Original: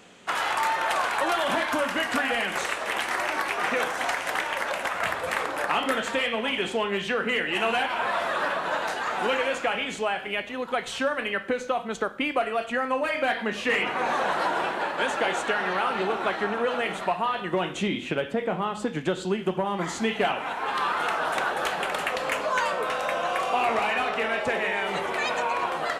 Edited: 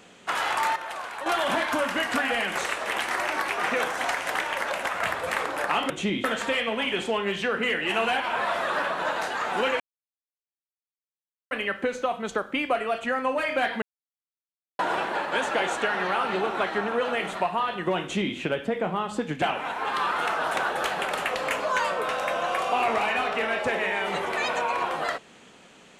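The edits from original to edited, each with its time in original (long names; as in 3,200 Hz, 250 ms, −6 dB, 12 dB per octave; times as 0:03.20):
0:00.76–0:01.26: clip gain −9.5 dB
0:09.46–0:11.17: silence
0:13.48–0:14.45: silence
0:17.68–0:18.02: duplicate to 0:05.90
0:19.08–0:20.23: remove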